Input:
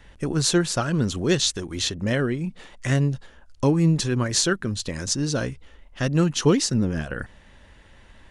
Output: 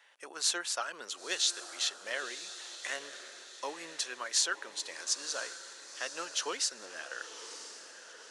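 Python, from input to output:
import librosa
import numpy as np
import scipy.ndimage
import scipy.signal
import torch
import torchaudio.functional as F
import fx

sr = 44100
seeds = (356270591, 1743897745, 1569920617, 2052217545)

y = scipy.signal.sosfilt(scipy.signal.bessel(4, 870.0, 'highpass', norm='mag', fs=sr, output='sos'), x)
y = fx.echo_diffused(y, sr, ms=992, feedback_pct=52, wet_db=-11.5)
y = F.gain(torch.from_numpy(y), -6.0).numpy()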